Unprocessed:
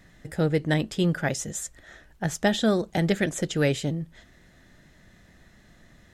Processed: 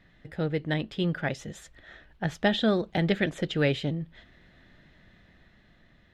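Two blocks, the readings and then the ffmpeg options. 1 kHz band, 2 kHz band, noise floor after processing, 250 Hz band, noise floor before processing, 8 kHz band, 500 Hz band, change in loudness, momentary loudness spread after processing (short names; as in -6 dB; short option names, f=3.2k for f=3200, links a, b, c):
-2.0 dB, -1.5 dB, -61 dBFS, -2.5 dB, -57 dBFS, -16.5 dB, -2.5 dB, -2.0 dB, 14 LU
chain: -af "highshelf=f=5.1k:t=q:w=1.5:g=-13,dynaudnorm=f=290:g=9:m=4dB,volume=-5.5dB"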